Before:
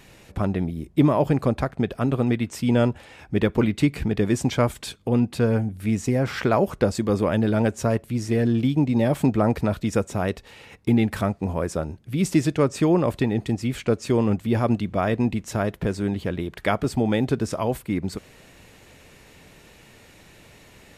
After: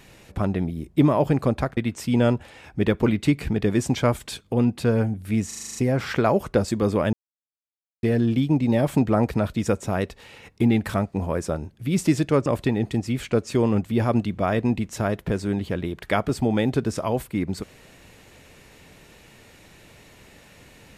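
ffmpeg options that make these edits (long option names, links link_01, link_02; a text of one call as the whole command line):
ffmpeg -i in.wav -filter_complex "[0:a]asplit=12[link_01][link_02][link_03][link_04][link_05][link_06][link_07][link_08][link_09][link_10][link_11][link_12];[link_01]atrim=end=1.772[link_13];[link_02]atrim=start=2.318:end=6.062[link_14];[link_03]atrim=start=6.018:end=6.062[link_15];[link_04]atrim=start=6.018:end=6.062[link_16];[link_05]atrim=start=6.018:end=6.062[link_17];[link_06]atrim=start=6.018:end=6.062[link_18];[link_07]atrim=start=6.018:end=6.062[link_19];[link_08]atrim=start=6.018:end=6.062[link_20];[link_09]atrim=start=6.018:end=7.4,asetpts=PTS-STARTPTS,afade=type=out:start_time=1.378:duration=0.004:curve=hsin[link_21];[link_10]atrim=start=7.4:end=8.3,asetpts=PTS-STARTPTS,volume=0[link_22];[link_11]atrim=start=8.3:end=12.732,asetpts=PTS-STARTPTS,afade=type=in:duration=0.004:curve=hsin[link_23];[link_12]atrim=start=13.008[link_24];[link_13][link_14]acrossfade=duration=0.004:curve1=hsin:curve2=hsin[link_25];[link_25][link_15]acrossfade=duration=0.004:curve1=hsin:curve2=hsin[link_26];[link_26][link_16]acrossfade=duration=0.004:curve1=hsin:curve2=hsin[link_27];[link_27][link_17]acrossfade=duration=0.004:curve1=hsin:curve2=hsin[link_28];[link_28][link_18]acrossfade=duration=0.004:curve1=hsin:curve2=hsin[link_29];[link_29][link_19]acrossfade=duration=0.004:curve1=hsin:curve2=hsin[link_30];[link_30][link_20]acrossfade=duration=0.004:curve1=hsin:curve2=hsin[link_31];[link_21][link_22][link_23]concat=n=3:v=0:a=1[link_32];[link_31][link_32]acrossfade=duration=0.004:curve1=hsin:curve2=hsin[link_33];[link_33][link_24]acrossfade=duration=0.004:curve1=hsin:curve2=hsin" out.wav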